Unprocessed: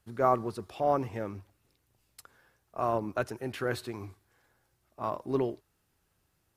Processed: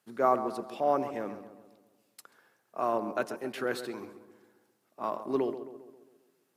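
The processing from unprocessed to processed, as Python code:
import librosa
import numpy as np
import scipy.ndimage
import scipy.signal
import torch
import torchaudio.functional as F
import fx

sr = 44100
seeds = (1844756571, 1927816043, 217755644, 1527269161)

y = scipy.signal.sosfilt(scipy.signal.butter(4, 180.0, 'highpass', fs=sr, output='sos'), x)
y = fx.echo_filtered(y, sr, ms=134, feedback_pct=53, hz=1900.0, wet_db=-10.5)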